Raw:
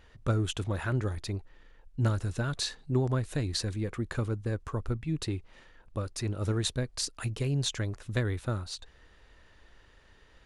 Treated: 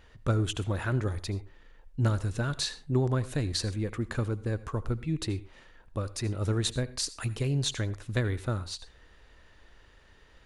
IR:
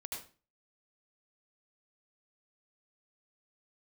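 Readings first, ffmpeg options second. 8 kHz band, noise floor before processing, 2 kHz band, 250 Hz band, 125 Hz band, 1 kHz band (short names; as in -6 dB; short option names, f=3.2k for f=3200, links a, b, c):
+1.0 dB, -59 dBFS, +1.0 dB, +1.0 dB, +1.0 dB, +1.0 dB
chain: -filter_complex "[0:a]asplit=2[a][b];[1:a]atrim=start_sample=2205,afade=t=out:st=0.19:d=0.01,atrim=end_sample=8820[c];[b][c]afir=irnorm=-1:irlink=0,volume=-12dB[d];[a][d]amix=inputs=2:normalize=0"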